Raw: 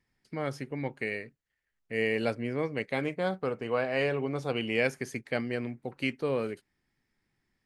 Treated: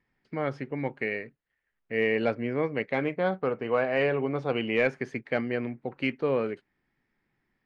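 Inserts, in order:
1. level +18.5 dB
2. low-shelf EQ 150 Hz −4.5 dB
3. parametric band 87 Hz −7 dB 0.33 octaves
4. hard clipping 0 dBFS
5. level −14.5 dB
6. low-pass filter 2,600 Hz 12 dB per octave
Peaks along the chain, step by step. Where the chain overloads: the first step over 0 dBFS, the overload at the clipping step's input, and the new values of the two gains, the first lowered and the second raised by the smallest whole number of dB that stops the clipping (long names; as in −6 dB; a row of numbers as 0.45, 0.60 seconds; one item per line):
+6.0, +5.0, +5.0, 0.0, −14.5, −14.0 dBFS
step 1, 5.0 dB
step 1 +13.5 dB, step 5 −9.5 dB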